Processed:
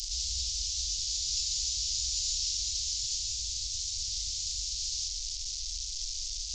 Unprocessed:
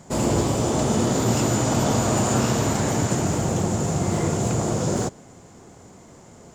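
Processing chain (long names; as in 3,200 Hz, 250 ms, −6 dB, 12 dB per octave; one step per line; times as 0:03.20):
linear delta modulator 32 kbit/s, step −22.5 dBFS
inverse Chebyshev band-stop filter 140–1,500 Hz, stop band 60 dB
level +4.5 dB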